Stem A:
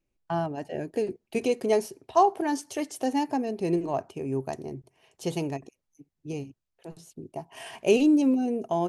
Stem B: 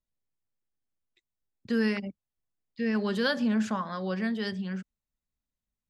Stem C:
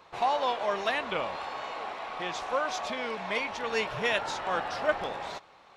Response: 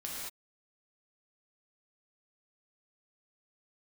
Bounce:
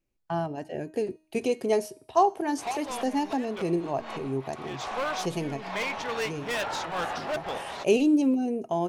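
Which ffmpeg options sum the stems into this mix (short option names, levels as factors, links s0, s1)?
-filter_complex "[0:a]bandreject=f=313.6:t=h:w=4,bandreject=f=627.2:t=h:w=4,bandreject=f=940.8:t=h:w=4,bandreject=f=1254.4:t=h:w=4,bandreject=f=1568:t=h:w=4,bandreject=f=1881.6:t=h:w=4,bandreject=f=2195.2:t=h:w=4,bandreject=f=2508.8:t=h:w=4,bandreject=f=2822.4:t=h:w=4,bandreject=f=3136:t=h:w=4,bandreject=f=3449.6:t=h:w=4,bandreject=f=3763.2:t=h:w=4,bandreject=f=4076.8:t=h:w=4,bandreject=f=4390.4:t=h:w=4,bandreject=f=4704:t=h:w=4,bandreject=f=5017.6:t=h:w=4,bandreject=f=5331.2:t=h:w=4,bandreject=f=5644.8:t=h:w=4,bandreject=f=5958.4:t=h:w=4,bandreject=f=6272:t=h:w=4,bandreject=f=6585.6:t=h:w=4,bandreject=f=6899.2:t=h:w=4,bandreject=f=7212.8:t=h:w=4,bandreject=f=7526.4:t=h:w=4,bandreject=f=7840:t=h:w=4,bandreject=f=8153.6:t=h:w=4,bandreject=f=8467.2:t=h:w=4,bandreject=f=8780.8:t=h:w=4,bandreject=f=9094.4:t=h:w=4,bandreject=f=9408:t=h:w=4,bandreject=f=9721.6:t=h:w=4,bandreject=f=10035.2:t=h:w=4,bandreject=f=10348.8:t=h:w=4,bandreject=f=10662.4:t=h:w=4,bandreject=f=10976:t=h:w=4,bandreject=f=11289.6:t=h:w=4,bandreject=f=11603.2:t=h:w=4,bandreject=f=11916.8:t=h:w=4,volume=0.891,asplit=2[s0][s1];[1:a]aeval=exprs='max(val(0),0)':c=same,acompressor=threshold=0.0141:ratio=6,adelay=1200,volume=0.501,asplit=3[s2][s3][s4];[s2]atrim=end=4.28,asetpts=PTS-STARTPTS,afade=t=out:st=4.276:d=0.004:c=hsin[s5];[s3]atrim=start=4.28:end=4.91,asetpts=PTS-STARTPTS,volume=0[s6];[s4]atrim=start=4.91,asetpts=PTS-STARTPTS,afade=t=in:d=0.004:c=hsin[s7];[s5][s6][s7]concat=n=3:v=0:a=1[s8];[2:a]volume=26.6,asoftclip=hard,volume=0.0376,adelay=2450,volume=1.33[s9];[s1]apad=whole_len=362348[s10];[s9][s10]sidechaincompress=threshold=0.00794:ratio=12:attack=9.9:release=122[s11];[s0][s8][s11]amix=inputs=3:normalize=0"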